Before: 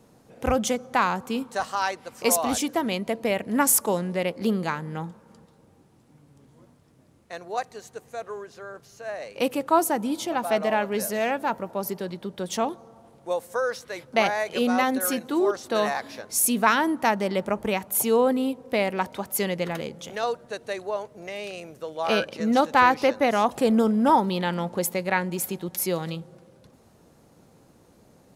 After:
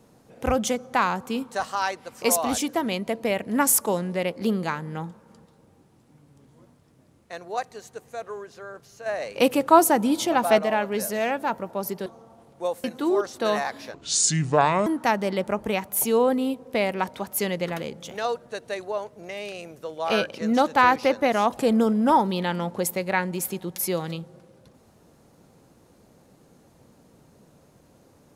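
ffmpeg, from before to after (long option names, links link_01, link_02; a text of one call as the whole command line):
ffmpeg -i in.wav -filter_complex "[0:a]asplit=7[link_01][link_02][link_03][link_04][link_05][link_06][link_07];[link_01]atrim=end=9.062[link_08];[link_02]atrim=start=9.058:end=10.592,asetpts=PTS-STARTPTS,volume=5dB[link_09];[link_03]atrim=start=10.588:end=12.062[link_10];[link_04]atrim=start=12.718:end=13.502[link_11];[link_05]atrim=start=15.138:end=16.244[link_12];[link_06]atrim=start=16.24:end=16.85,asetpts=PTS-STARTPTS,asetrate=29106,aresample=44100,atrim=end_sample=40759,asetpts=PTS-STARTPTS[link_13];[link_07]atrim=start=16.846[link_14];[link_08][link_09]acrossfade=duration=0.004:curve1=hsin:curve2=hsin[link_15];[link_15][link_10]acrossfade=duration=0.004:curve1=hsin:curve2=hsin[link_16];[link_16][link_11]acrossfade=duration=0.004:curve1=hsin:curve2=hsin[link_17];[link_17][link_12]acrossfade=duration=0.004:curve1=hsin:curve2=hsin[link_18];[link_18][link_13]acrossfade=duration=0.004:curve1=hsin:curve2=hsin[link_19];[link_19][link_14]acrossfade=duration=0.004:curve1=hsin:curve2=hsin" out.wav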